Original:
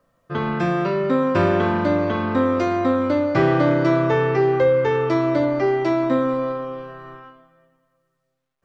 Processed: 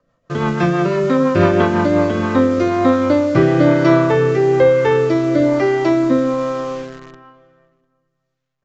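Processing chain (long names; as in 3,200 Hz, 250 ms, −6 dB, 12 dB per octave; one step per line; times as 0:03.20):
rotating-speaker cabinet horn 6 Hz, later 1.1 Hz, at 0:01.64
in parallel at −4 dB: bit reduction 6 bits
on the sum: downsampling to 16,000 Hz
slap from a distant wall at 120 metres, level −28 dB
on a send at −20.5 dB: convolution reverb RT60 1.4 s, pre-delay 7 ms
on the sum: level +2.5 dB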